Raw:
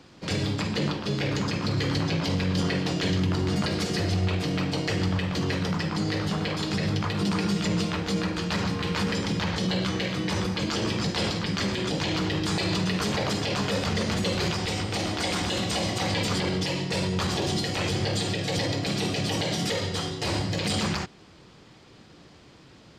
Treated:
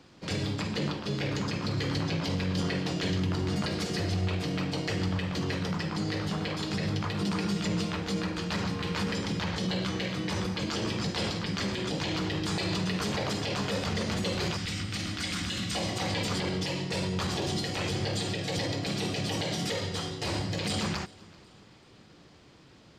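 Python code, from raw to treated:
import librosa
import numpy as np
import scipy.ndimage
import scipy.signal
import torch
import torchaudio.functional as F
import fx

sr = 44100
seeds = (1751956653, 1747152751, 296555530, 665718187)

y = fx.band_shelf(x, sr, hz=600.0, db=-11.5, octaves=1.7, at=(14.57, 15.75))
y = fx.echo_feedback(y, sr, ms=385, feedback_pct=46, wet_db=-24.0)
y = y * 10.0 ** (-4.0 / 20.0)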